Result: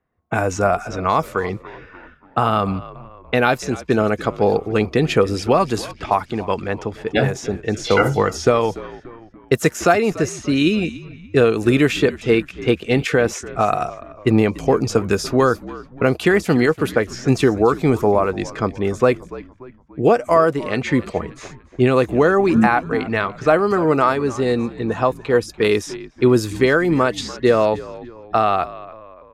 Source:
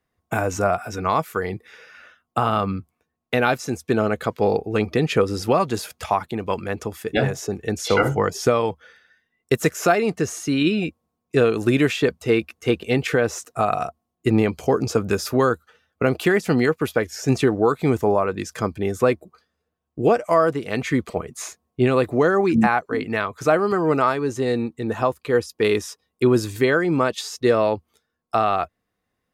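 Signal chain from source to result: frequency-shifting echo 290 ms, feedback 48%, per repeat -60 Hz, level -17.5 dB; level-controlled noise filter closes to 1.8 kHz, open at -17 dBFS; trim +3 dB

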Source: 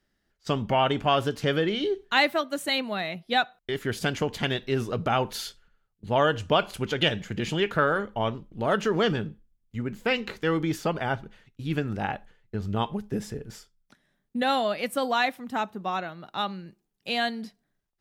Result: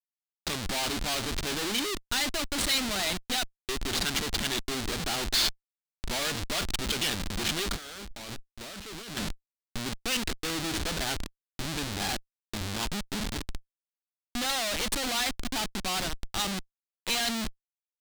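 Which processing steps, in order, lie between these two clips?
Schmitt trigger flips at -35 dBFS; graphic EQ 125/500/1000/4000/8000 Hz -11/-7/-3/+7/+4 dB; 7.76–9.17 s: compressor with a negative ratio -41 dBFS, ratio -1

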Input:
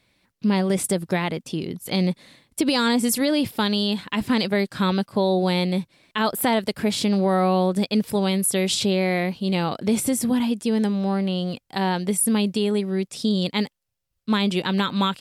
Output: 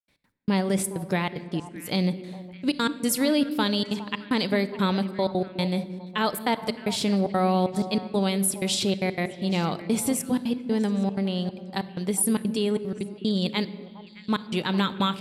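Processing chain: trance gate ".x.x..xxxxx.xxxx" 188 bpm -60 dB; repeats whose band climbs or falls 205 ms, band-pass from 290 Hz, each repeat 1.4 oct, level -9 dB; simulated room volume 2000 m³, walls mixed, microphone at 0.43 m; trim -2.5 dB

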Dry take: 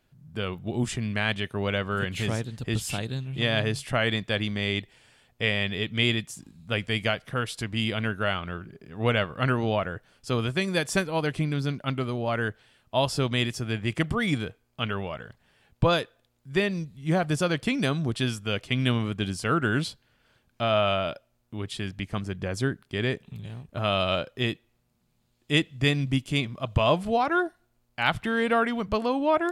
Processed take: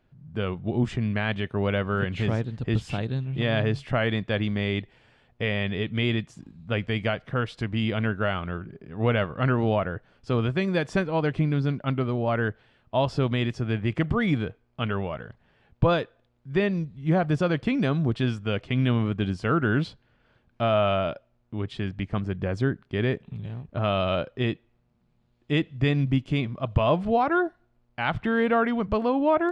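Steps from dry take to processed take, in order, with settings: in parallel at 0 dB: peak limiter -16.5 dBFS, peak gain reduction 9.5 dB; on the sum: tape spacing loss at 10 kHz 26 dB; trim -2 dB

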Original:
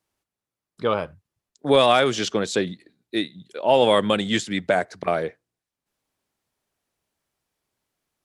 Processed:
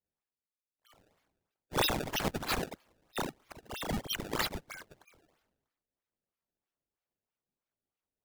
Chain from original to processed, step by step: expander on every frequency bin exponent 3; inverse Chebyshev high-pass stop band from 620 Hz, stop band 80 dB; decimation with a swept rate 24×, swing 160% 3.1 Hz; decay stretcher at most 46 dB/s; trim +5.5 dB

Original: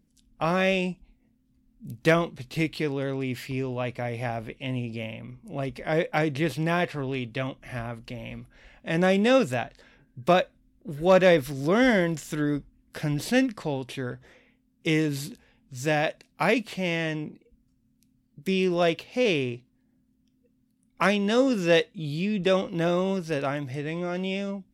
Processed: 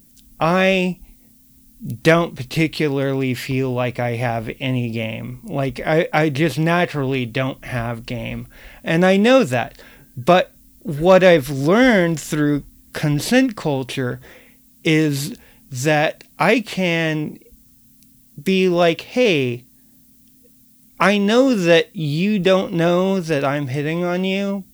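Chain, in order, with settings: in parallel at -1.5 dB: compression, threshold -31 dBFS, peak gain reduction 16 dB; on the sum: added noise violet -59 dBFS; trim +6 dB

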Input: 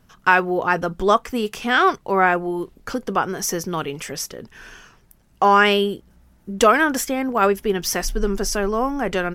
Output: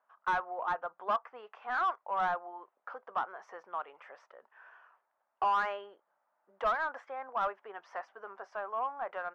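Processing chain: ladder band-pass 670 Hz, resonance 55%; resonant low shelf 730 Hz -12.5 dB, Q 1.5; overdrive pedal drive 16 dB, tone 1 kHz, clips at -15 dBFS; trim -3 dB

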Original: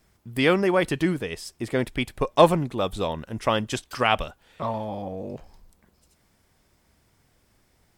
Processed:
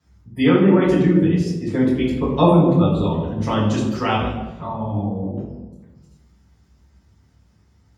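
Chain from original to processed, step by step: spectral gate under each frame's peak -30 dB strong; reverberation RT60 1.2 s, pre-delay 3 ms, DRR -8 dB; dynamic bell 320 Hz, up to +7 dB, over -20 dBFS, Q 1.1; trim -13.5 dB

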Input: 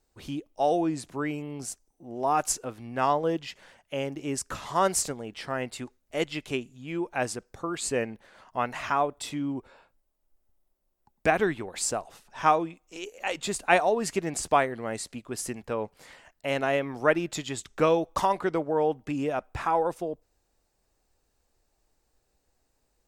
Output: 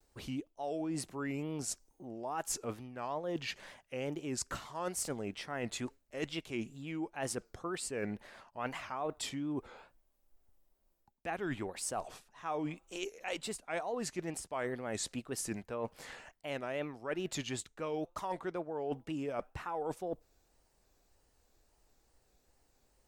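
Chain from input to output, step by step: wow and flutter 140 cents; reverse; compression 12:1, threshold -36 dBFS, peak gain reduction 21 dB; reverse; trim +1.5 dB

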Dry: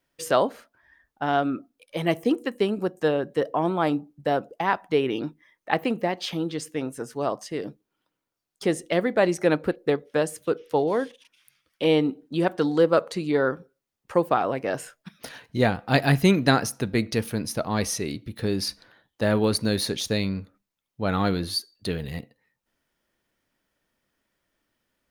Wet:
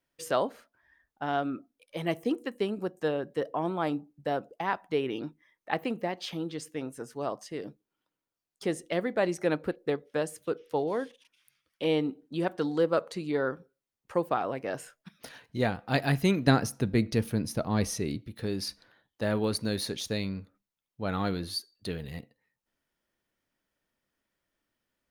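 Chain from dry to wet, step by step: 16.47–18.22 s: bass shelf 390 Hz +7.5 dB; trim -6.5 dB

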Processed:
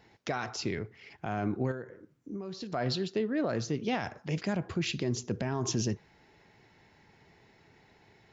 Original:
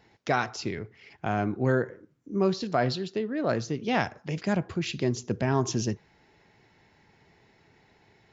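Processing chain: peak limiter -21 dBFS, peak gain reduction 10.5 dB; 1.71–2.73 s: compression 5:1, threshold -37 dBFS, peak gain reduction 11 dB

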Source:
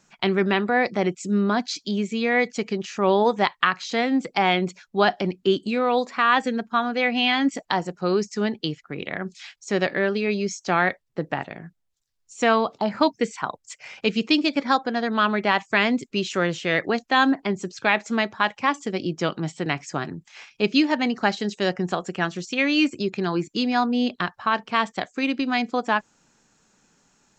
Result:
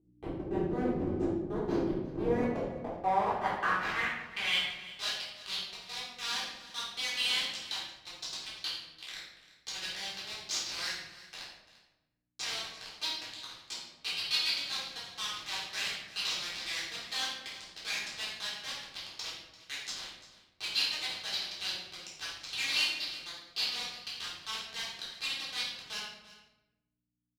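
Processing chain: octave divider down 1 oct, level -5 dB; differentiator; level rider gain up to 5.5 dB; waveshaping leveller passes 2; Schmitt trigger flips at -18.5 dBFS; hum 60 Hz, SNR 27 dB; band-pass sweep 340 Hz -> 4.2 kHz, 2.16–4.85 s; delay 343 ms -17.5 dB; simulated room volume 380 m³, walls mixed, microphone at 3.7 m

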